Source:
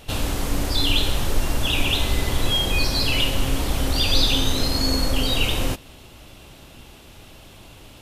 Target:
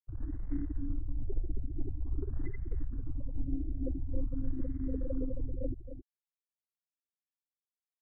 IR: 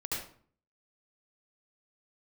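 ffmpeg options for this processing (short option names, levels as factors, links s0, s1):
-filter_complex "[0:a]afftfilt=real='re*gte(hypot(re,im),0.251)':imag='im*gte(hypot(re,im),0.251)':win_size=1024:overlap=0.75,lowshelf=f=280:t=q:w=1.5:g=-12.5,acrossover=split=230[s0][s1];[s1]acompressor=threshold=0.0178:ratio=8[s2];[s0][s2]amix=inputs=2:normalize=0,asplit=2[s3][s4];[s4]adelay=268.2,volume=0.316,highshelf=f=4000:g=-6.04[s5];[s3][s5]amix=inputs=2:normalize=0,asplit=2[s6][s7];[s7]acrusher=bits=4:mode=log:mix=0:aa=0.000001,volume=0.501[s8];[s6][s8]amix=inputs=2:normalize=0,afftfilt=real='re*lt(b*sr/1024,740*pow(2200/740,0.5+0.5*sin(2*PI*0.47*pts/sr)))':imag='im*lt(b*sr/1024,740*pow(2200/740,0.5+0.5*sin(2*PI*0.47*pts/sr)))':win_size=1024:overlap=0.75,volume=0.794"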